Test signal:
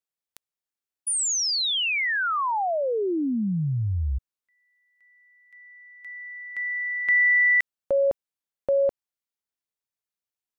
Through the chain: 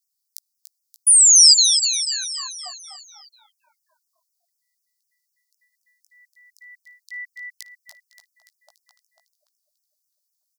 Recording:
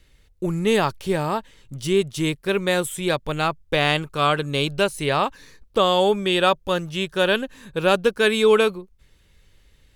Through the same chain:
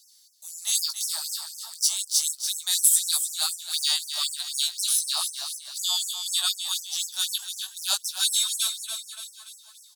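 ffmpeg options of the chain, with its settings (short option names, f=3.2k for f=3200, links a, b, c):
-filter_complex "[0:a]flanger=delay=16.5:depth=2.9:speed=0.23,highshelf=f=3.4k:t=q:w=3:g=12,asplit=2[a][b];[b]aecho=0:1:288|576|864|1152|1440|1728:0.398|0.203|0.104|0.0528|0.0269|0.0137[c];[a][c]amix=inputs=2:normalize=0,crystalizer=i=4.5:c=0,afftfilt=real='re*gte(b*sr/1024,600*pow(5300/600,0.5+0.5*sin(2*PI*4*pts/sr)))':imag='im*gte(b*sr/1024,600*pow(5300/600,0.5+0.5*sin(2*PI*4*pts/sr)))':win_size=1024:overlap=0.75,volume=-12dB"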